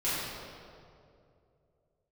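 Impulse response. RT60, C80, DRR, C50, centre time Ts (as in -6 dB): 2.6 s, -1.0 dB, -13.5 dB, -3.0 dB, 143 ms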